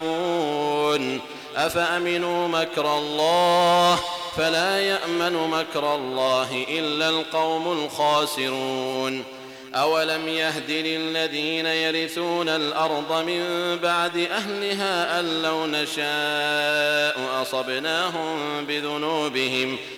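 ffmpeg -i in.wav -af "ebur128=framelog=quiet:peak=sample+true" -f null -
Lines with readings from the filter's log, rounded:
Integrated loudness:
  I:         -22.9 LUFS
  Threshold: -33.0 LUFS
Loudness range:
  LRA:         3.0 LU
  Threshold: -42.8 LUFS
  LRA low:   -23.9 LUFS
  LRA high:  -20.9 LUFS
Sample peak:
  Peak:      -12.6 dBFS
True peak:
  Peak:      -12.5 dBFS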